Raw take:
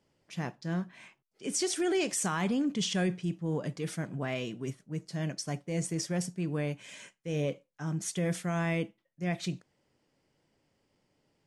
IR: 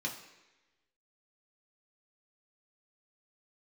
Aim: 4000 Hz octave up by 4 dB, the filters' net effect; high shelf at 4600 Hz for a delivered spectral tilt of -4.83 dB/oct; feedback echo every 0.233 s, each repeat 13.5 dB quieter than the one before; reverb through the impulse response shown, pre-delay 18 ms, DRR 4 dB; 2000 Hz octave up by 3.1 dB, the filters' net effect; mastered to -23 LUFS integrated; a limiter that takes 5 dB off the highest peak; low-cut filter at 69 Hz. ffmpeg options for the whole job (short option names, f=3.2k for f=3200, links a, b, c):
-filter_complex "[0:a]highpass=69,equalizer=f=2k:t=o:g=3,equalizer=f=4k:t=o:g=8.5,highshelf=f=4.6k:g=-7.5,alimiter=limit=-23dB:level=0:latency=1,aecho=1:1:233|466:0.211|0.0444,asplit=2[a][b];[1:a]atrim=start_sample=2205,adelay=18[c];[b][c]afir=irnorm=-1:irlink=0,volume=-6.5dB[d];[a][d]amix=inputs=2:normalize=0,volume=9dB"